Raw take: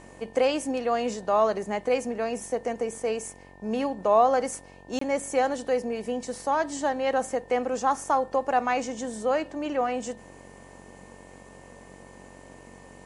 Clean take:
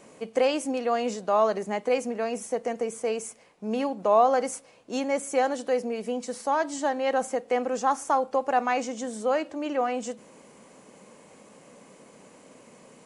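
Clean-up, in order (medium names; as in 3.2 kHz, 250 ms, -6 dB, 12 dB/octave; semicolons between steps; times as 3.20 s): de-hum 46.4 Hz, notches 22; band-stop 1.8 kHz, Q 30; interpolate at 4.99 s, 24 ms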